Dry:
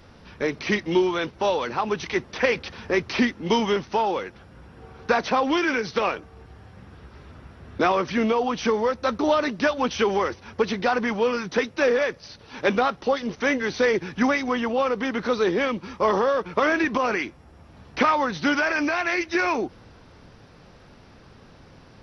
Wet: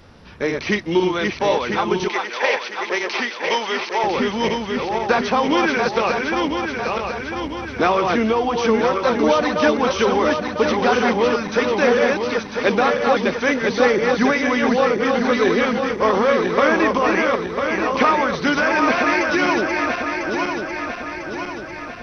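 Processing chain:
feedback delay that plays each chunk backwards 499 ms, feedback 72%, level −3.5 dB
0:02.08–0:04.04: high-pass filter 550 Hz 12 dB per octave
level +3 dB

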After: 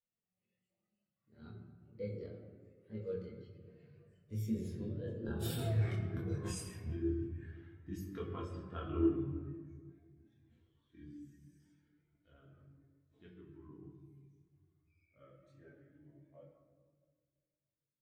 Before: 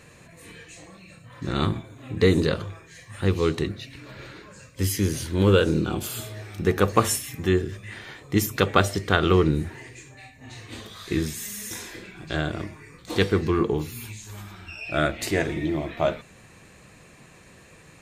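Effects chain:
source passing by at 0:05.77, 35 m/s, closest 6.3 metres
high-shelf EQ 6,800 Hz −3 dB
compressor whose output falls as the input rises −40 dBFS, ratio −1
multi-voice chorus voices 4, 0.23 Hz, delay 24 ms, depth 3.6 ms
convolution reverb RT60 2.6 s, pre-delay 4 ms, DRR −1 dB
every bin expanded away from the loudest bin 1.5 to 1
level +3.5 dB

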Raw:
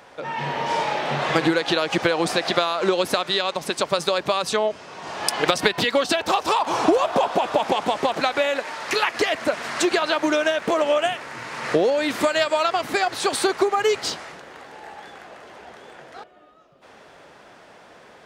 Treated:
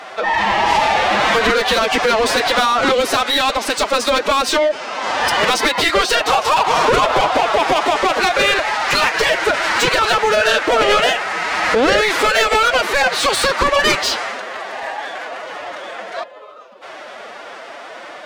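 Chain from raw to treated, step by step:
mid-hump overdrive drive 27 dB, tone 4,100 Hz, clips at −2 dBFS
phase-vocoder pitch shift with formants kept +6 semitones
level −3.5 dB

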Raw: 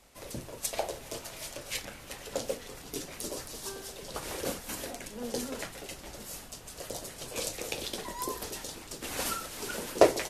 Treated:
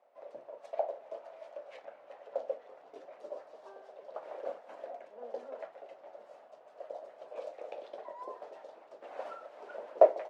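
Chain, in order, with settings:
four-pole ladder band-pass 680 Hz, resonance 65%
level +4.5 dB

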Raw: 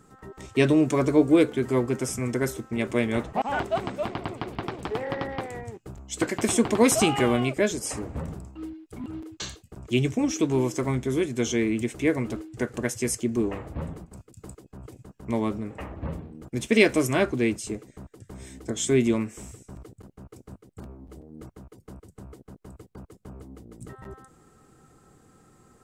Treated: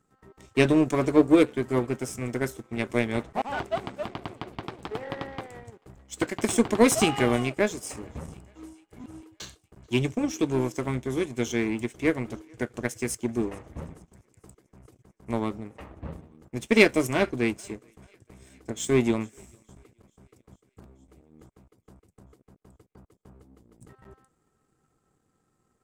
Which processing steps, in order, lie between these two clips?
feedback echo with a high-pass in the loop 437 ms, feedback 71%, high-pass 380 Hz, level −23 dB
power curve on the samples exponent 1.4
level +3.5 dB

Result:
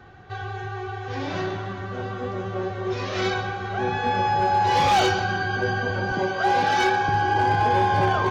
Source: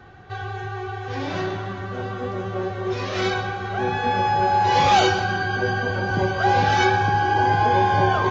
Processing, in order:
0:06.12–0:07.09: high-pass filter 190 Hz 12 dB per octave
gain into a clipping stage and back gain 12.5 dB
level −1.5 dB

